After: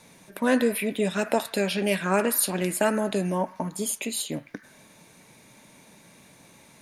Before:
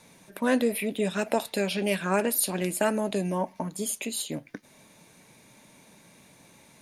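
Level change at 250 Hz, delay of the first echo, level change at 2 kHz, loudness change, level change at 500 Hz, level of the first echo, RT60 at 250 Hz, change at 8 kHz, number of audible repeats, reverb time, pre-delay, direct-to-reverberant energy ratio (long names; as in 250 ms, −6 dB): +2.0 dB, no echo audible, +2.5 dB, +2.0 dB, +2.0 dB, no echo audible, 0.95 s, +2.0 dB, no echo audible, 0.90 s, 33 ms, 10.5 dB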